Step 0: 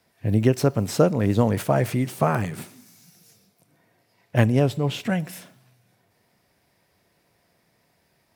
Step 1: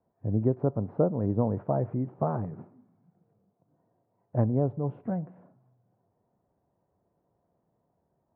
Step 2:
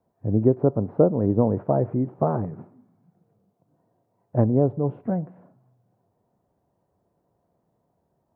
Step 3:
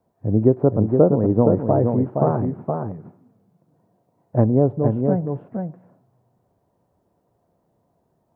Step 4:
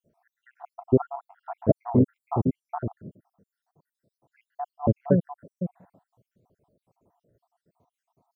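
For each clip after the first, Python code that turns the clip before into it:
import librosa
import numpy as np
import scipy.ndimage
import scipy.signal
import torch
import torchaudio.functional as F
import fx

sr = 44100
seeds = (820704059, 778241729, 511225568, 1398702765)

y1 = scipy.signal.sosfilt(scipy.signal.butter(4, 1000.0, 'lowpass', fs=sr, output='sos'), x)
y1 = y1 * librosa.db_to_amplitude(-6.5)
y2 = fx.dynamic_eq(y1, sr, hz=370.0, q=0.9, threshold_db=-37.0, ratio=4.0, max_db=5)
y2 = y2 * librosa.db_to_amplitude(3.5)
y3 = y2 + 10.0 ** (-5.0 / 20.0) * np.pad(y2, (int(468 * sr / 1000.0), 0))[:len(y2)]
y3 = y3 * librosa.db_to_amplitude(3.0)
y4 = fx.spec_dropout(y3, sr, seeds[0], share_pct=75)
y4 = y4 * librosa.db_to_amplitude(1.5)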